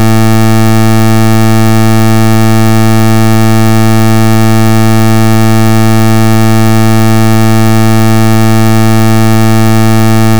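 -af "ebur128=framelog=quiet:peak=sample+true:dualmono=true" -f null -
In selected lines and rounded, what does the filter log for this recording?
Integrated loudness:
  I:          -3.5 LUFS
  Threshold: -13.5 LUFS
Loudness range:
  LRA:         0.0 LU
  Threshold: -23.5 LUFS
  LRA low:    -3.5 LUFS
  LRA high:   -3.5 LUFS
Sample peak:
  Peak:       -3.2 dBFS
True peak:
  Peak:       -1.8 dBFS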